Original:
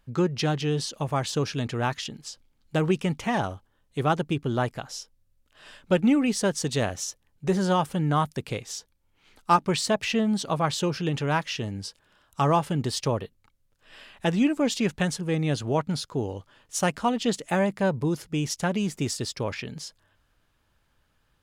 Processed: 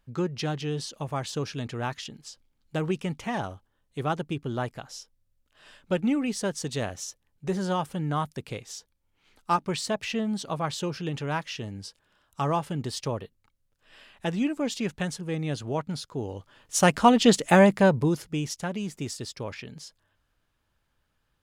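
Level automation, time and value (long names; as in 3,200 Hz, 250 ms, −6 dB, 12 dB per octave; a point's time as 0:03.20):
0:16.16 −4.5 dB
0:17.03 +7 dB
0:17.68 +7 dB
0:18.64 −5.5 dB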